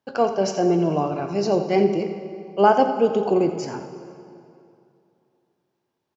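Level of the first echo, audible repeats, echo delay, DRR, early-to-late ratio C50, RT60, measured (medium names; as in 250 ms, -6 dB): -12.5 dB, 1, 86 ms, 6.5 dB, 7.5 dB, 2.6 s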